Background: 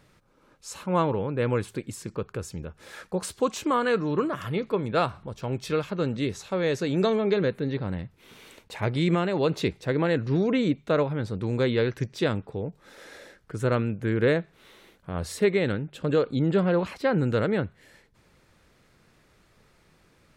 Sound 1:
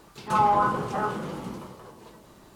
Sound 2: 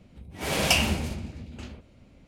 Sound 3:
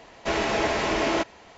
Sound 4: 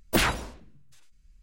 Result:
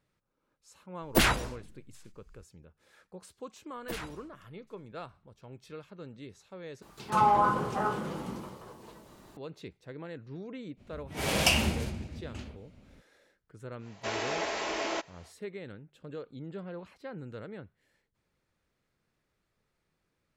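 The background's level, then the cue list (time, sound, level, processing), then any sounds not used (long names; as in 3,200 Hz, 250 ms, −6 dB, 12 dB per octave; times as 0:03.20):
background −18.5 dB
0:01.02: mix in 4 −0.5 dB
0:03.75: mix in 4 −16.5 dB
0:06.82: overwrite with 1 −2.5 dB
0:10.76: mix in 2 −2.5 dB, fades 0.05 s
0:13.78: mix in 3 −8 dB, fades 0.10 s + bass and treble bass −13 dB, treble +4 dB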